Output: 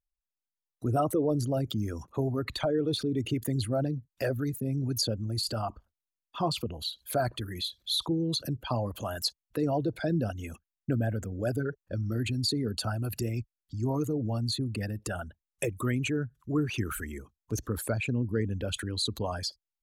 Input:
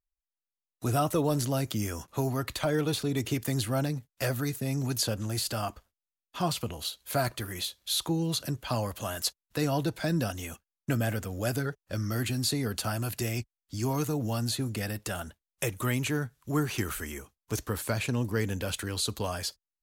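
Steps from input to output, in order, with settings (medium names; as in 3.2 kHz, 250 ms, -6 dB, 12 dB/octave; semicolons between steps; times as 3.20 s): resonances exaggerated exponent 2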